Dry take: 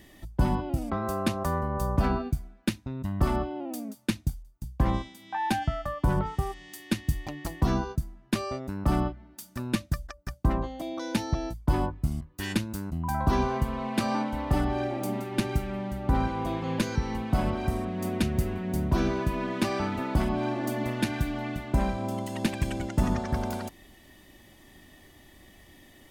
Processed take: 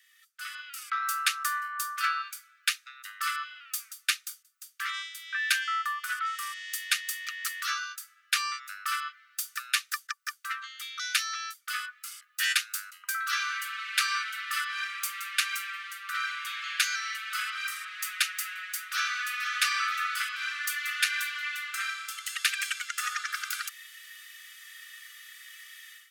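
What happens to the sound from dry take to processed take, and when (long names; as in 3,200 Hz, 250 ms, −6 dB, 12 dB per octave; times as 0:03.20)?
0:18.82–0:19.26: delay throw 480 ms, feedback 55%, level −8.5 dB
whole clip: Chebyshev high-pass filter 1,200 Hz, order 10; automatic gain control gain up to 16 dB; level −5 dB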